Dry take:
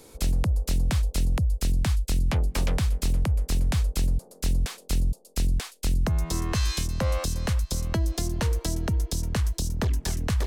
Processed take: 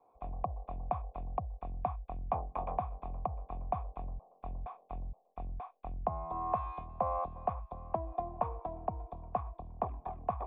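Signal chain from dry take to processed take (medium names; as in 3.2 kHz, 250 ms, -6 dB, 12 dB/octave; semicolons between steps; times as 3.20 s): cascade formant filter a; three bands expanded up and down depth 40%; trim +10.5 dB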